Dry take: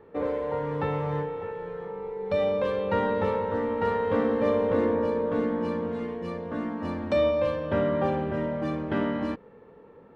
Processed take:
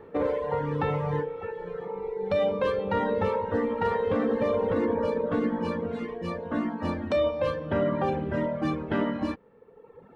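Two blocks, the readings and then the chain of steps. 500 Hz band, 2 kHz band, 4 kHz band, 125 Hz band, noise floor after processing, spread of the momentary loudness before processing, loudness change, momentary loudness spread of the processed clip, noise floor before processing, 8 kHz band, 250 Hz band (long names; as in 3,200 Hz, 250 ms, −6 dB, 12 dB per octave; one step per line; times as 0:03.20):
−1.0 dB, 0.0 dB, +0.5 dB, +0.5 dB, −53 dBFS, 9 LU, −0.5 dB, 8 LU, −52 dBFS, can't be measured, 0.0 dB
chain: reverb reduction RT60 1.4 s
brickwall limiter −22 dBFS, peak gain reduction 7 dB
level +5 dB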